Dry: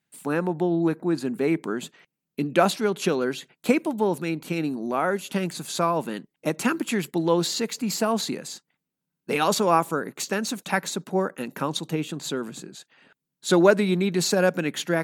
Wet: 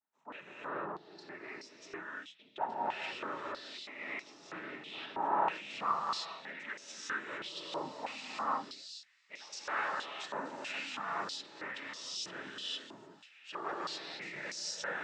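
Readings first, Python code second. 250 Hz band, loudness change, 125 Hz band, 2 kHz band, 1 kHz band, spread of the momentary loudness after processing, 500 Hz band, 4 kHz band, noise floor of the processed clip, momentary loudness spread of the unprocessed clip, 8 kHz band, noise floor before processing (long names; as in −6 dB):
−25.0 dB, −14.5 dB, −28.5 dB, −9.0 dB, −8.5 dB, 13 LU, −21.0 dB, −9.5 dB, −62 dBFS, 10 LU, −16.0 dB, −84 dBFS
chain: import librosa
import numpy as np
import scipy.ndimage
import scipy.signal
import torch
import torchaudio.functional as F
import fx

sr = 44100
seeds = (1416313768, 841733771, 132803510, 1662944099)

y = fx.octave_divider(x, sr, octaves=2, level_db=-5.0)
y = fx.tilt_eq(y, sr, slope=-1.5)
y = fx.rider(y, sr, range_db=4, speed_s=0.5)
y = fx.transient(y, sr, attack_db=-8, sustain_db=-4)
y = 10.0 ** (-18.0 / 20.0) * np.tanh(y / 10.0 ** (-18.0 / 20.0))
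y = fx.noise_vocoder(y, sr, seeds[0], bands=12)
y = fx.echo_wet_highpass(y, sr, ms=1002, feedback_pct=70, hz=3100.0, wet_db=-22.5)
y = fx.rev_gated(y, sr, seeds[1], gate_ms=480, shape='rising', drr_db=-7.5)
y = fx.filter_held_bandpass(y, sr, hz=3.1, low_hz=930.0, high_hz=5500.0)
y = y * 10.0 ** (-3.0 / 20.0)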